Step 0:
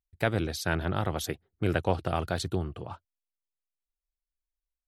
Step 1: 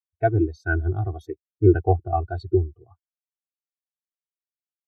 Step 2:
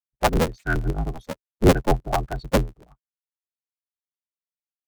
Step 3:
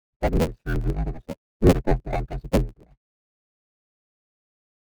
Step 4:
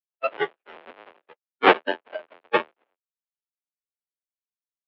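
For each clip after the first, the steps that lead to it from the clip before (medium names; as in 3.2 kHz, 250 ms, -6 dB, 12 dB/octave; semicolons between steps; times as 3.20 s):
comb 2.7 ms, depth 69%; spectral contrast expander 2.5:1; trim +5 dB
cycle switcher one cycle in 2, inverted
median filter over 41 samples
square wave that keeps the level; spectral noise reduction 19 dB; mistuned SSB -72 Hz 520–3200 Hz; trim +5.5 dB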